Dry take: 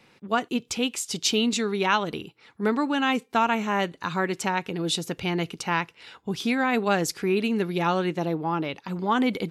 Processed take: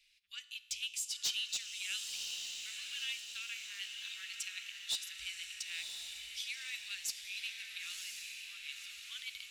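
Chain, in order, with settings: inverse Chebyshev band-stop 140–890 Hz, stop band 60 dB; resonator 58 Hz, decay 1.1 s, harmonics all, mix 50%; soft clip -27 dBFS, distortion -14 dB; diffused feedback echo 1.01 s, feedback 51%, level -4 dB; gain -1 dB

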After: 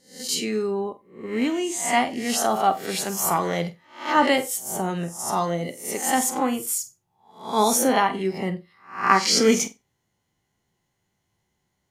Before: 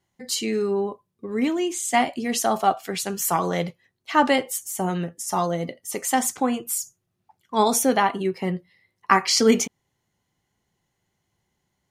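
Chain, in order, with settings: spectral swells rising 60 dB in 0.44 s; on a send: flutter echo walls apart 8 m, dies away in 0.21 s; on the sum: gain -1.5 dB

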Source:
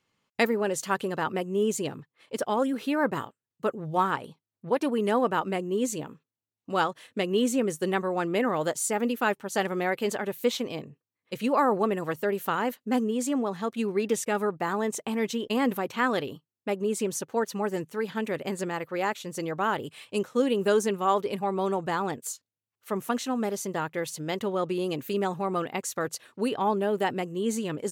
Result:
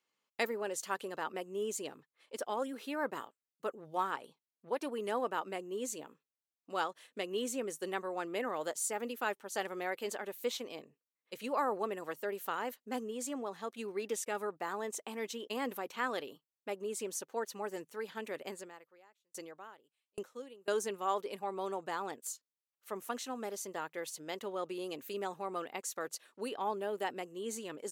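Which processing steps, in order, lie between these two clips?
HPF 180 Hz; tone controls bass -10 dB, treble +3 dB; 18.51–20.68 dB-ramp tremolo decaying 1.2 Hz, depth 40 dB; gain -9 dB

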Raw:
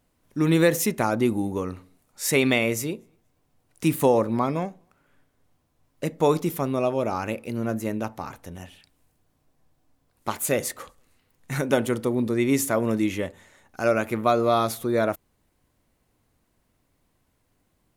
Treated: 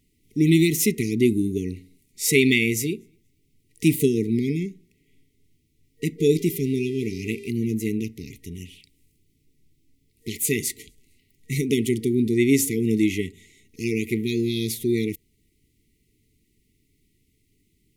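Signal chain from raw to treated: 6.18–7.49 buzz 400 Hz, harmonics 33, -43 dBFS -8 dB/oct; FFT band-reject 460–1900 Hz; gain +3.5 dB

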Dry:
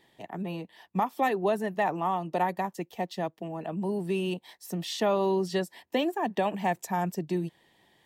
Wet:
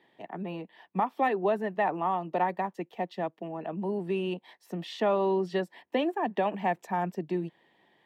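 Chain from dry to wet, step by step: three-band isolator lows -14 dB, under 160 Hz, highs -17 dB, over 3400 Hz

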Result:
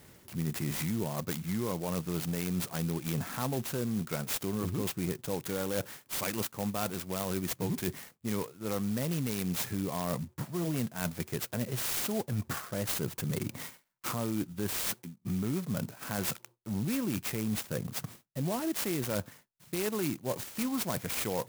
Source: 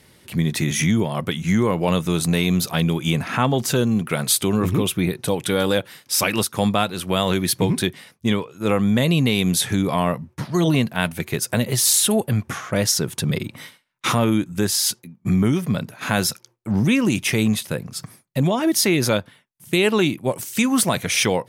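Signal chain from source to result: reverse; compressor 4:1, threshold -29 dBFS, peak gain reduction 13 dB; reverse; clock jitter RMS 0.084 ms; gain -2.5 dB

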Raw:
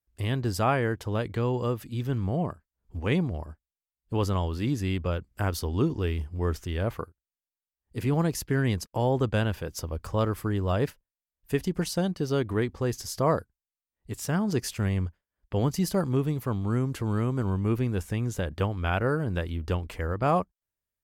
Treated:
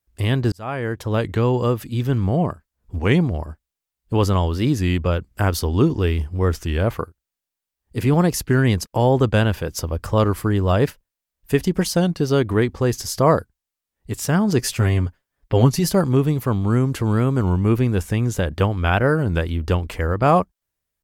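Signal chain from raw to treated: 0.52–1.22 fade in; 14.59–15.92 comb 7.5 ms, depth 58%; record warp 33 1/3 rpm, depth 100 cents; gain +8.5 dB

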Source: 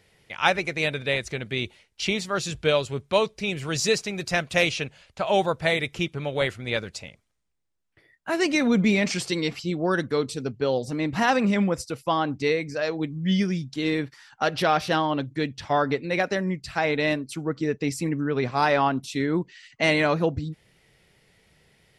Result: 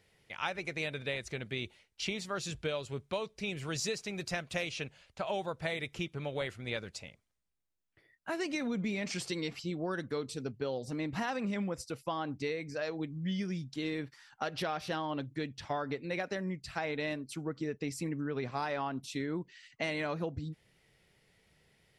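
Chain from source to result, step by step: compressor, threshold -24 dBFS, peak gain reduction 9.5 dB; gain -7.5 dB

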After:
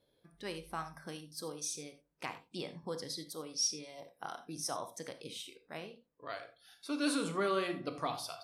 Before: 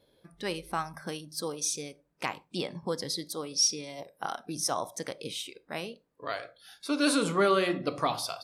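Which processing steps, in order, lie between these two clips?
5.77–6.3 LPF 3400 Hz 6 dB/oct; non-linear reverb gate 0.11 s flat, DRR 9 dB; gain -8.5 dB

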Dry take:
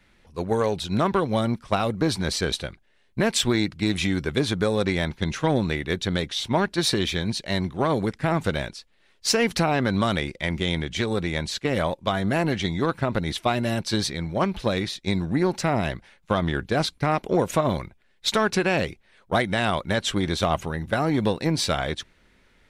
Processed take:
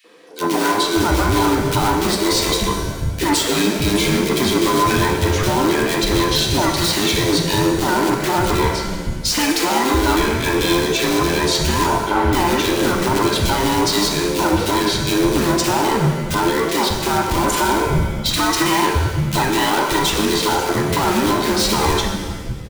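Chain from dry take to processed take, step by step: band inversion scrambler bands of 500 Hz; in parallel at -4.5 dB: wrapped overs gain 21 dB; 11.86–12.33 on the sum: air absorption 420 m; three bands offset in time highs, mids, lows 40/600 ms, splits 190/2200 Hz; limiter -17 dBFS, peak gain reduction 8.5 dB; shimmer reverb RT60 1.3 s, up +7 st, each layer -8 dB, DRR 2.5 dB; gain +7.5 dB

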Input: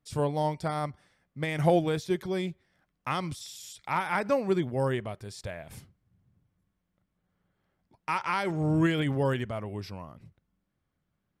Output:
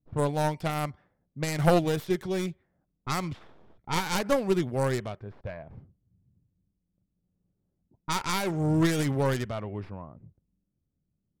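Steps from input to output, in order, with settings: tracing distortion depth 0.48 ms; low-pass opened by the level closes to 340 Hz, open at -26.5 dBFS; gain +1 dB

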